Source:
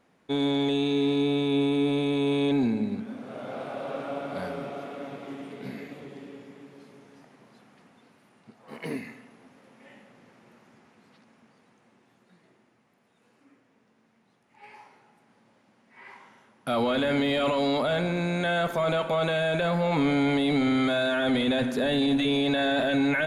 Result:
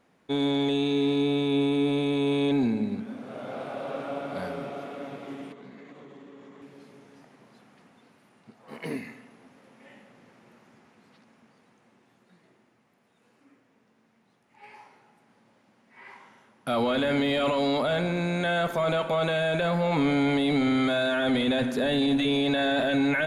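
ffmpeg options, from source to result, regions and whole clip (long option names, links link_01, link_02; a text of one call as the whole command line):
ffmpeg -i in.wav -filter_complex "[0:a]asettb=1/sr,asplit=3[link_01][link_02][link_03];[link_01]atrim=end=5.524[link_04];[link_02]atrim=start=5.52:end=6.62,asetpts=PTS-STARTPTS,afade=type=in:duration=0.004:curve=qsin,afade=type=out:start_time=1.096:duration=0.004:curve=qsin,highpass=140,equalizer=frequency=1100:width_type=q:width=4:gain=8,equalizer=frequency=2500:width_type=q:width=4:gain=-5,equalizer=frequency=4900:width_type=q:width=4:gain=-7,lowpass=frequency=7700:width=0.5412,lowpass=frequency=7700:width=1.3066,acompressor=threshold=-44dB:ratio=4:attack=3.2:release=140:knee=1:detection=peak[link_05];[link_03]atrim=start=6.616[link_06];[link_04][link_05]acrossfade=duration=0.004:curve1=hsin:curve2=qsin[link_07];[link_07][link_06]acrossfade=duration=0.004:curve1=qsin:curve2=hsin" out.wav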